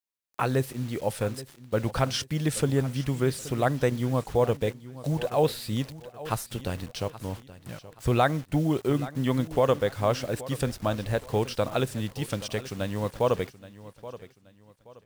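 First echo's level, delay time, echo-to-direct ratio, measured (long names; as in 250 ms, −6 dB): −16.5 dB, 826 ms, −16.0 dB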